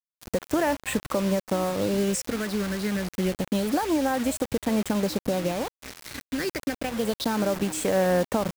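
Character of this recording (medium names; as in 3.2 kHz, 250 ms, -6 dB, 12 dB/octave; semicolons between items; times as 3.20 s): phasing stages 6, 0.28 Hz, lowest notch 770–4800 Hz; a quantiser's noise floor 6-bit, dither none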